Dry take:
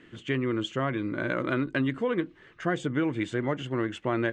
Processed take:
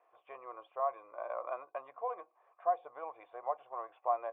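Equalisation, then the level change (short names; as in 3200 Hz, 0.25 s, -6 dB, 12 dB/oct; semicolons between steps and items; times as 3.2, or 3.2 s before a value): vocal tract filter a; tilt +4 dB/oct; resonant low shelf 350 Hz -13.5 dB, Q 3; +5.5 dB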